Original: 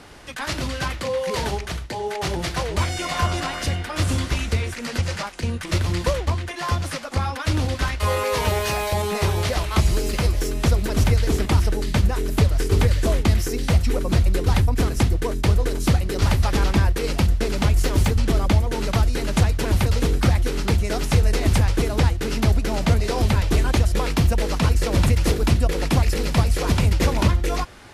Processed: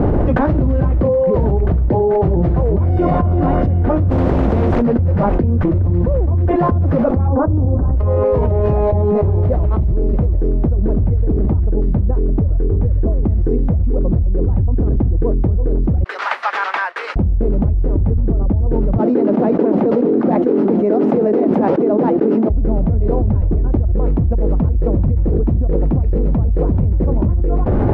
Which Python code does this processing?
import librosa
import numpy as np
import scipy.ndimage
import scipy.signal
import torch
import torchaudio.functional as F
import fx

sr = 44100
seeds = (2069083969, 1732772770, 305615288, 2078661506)

y = fx.spectral_comp(x, sr, ratio=4.0, at=(4.1, 4.82))
y = fx.lowpass(y, sr, hz=1200.0, slope=24, at=(7.28, 7.97))
y = fx.highpass(y, sr, hz=1400.0, slope=24, at=(16.04, 17.16))
y = fx.steep_highpass(y, sr, hz=220.0, slope=36, at=(18.98, 22.5))
y = scipy.signal.sosfilt(scipy.signal.cheby1(2, 1.0, 570.0, 'lowpass', fs=sr, output='sos'), y)
y = fx.low_shelf(y, sr, hz=400.0, db=9.5)
y = fx.env_flatten(y, sr, amount_pct=100)
y = F.gain(torch.from_numpy(y), -10.0).numpy()